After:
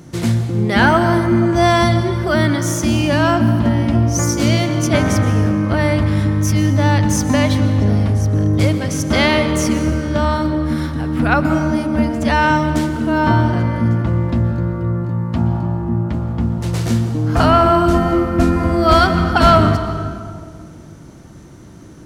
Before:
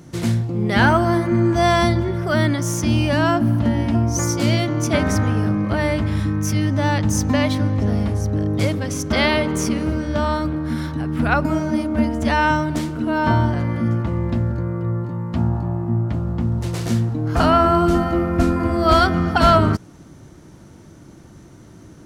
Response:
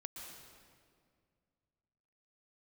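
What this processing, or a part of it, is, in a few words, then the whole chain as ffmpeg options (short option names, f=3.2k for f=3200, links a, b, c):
saturated reverb return: -filter_complex "[0:a]asplit=2[a][b];[1:a]atrim=start_sample=2205[c];[b][c]afir=irnorm=-1:irlink=0,asoftclip=type=tanh:threshold=-11dB,volume=2dB[d];[a][d]amix=inputs=2:normalize=0,volume=-1dB"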